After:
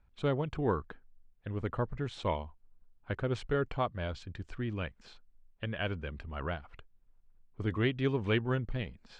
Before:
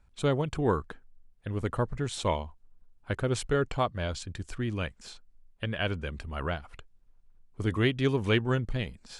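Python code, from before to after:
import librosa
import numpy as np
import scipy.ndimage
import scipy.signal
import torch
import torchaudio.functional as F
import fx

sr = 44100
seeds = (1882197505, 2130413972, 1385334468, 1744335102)

y = scipy.signal.sosfilt(scipy.signal.butter(2, 3400.0, 'lowpass', fs=sr, output='sos'), x)
y = y * 10.0 ** (-4.0 / 20.0)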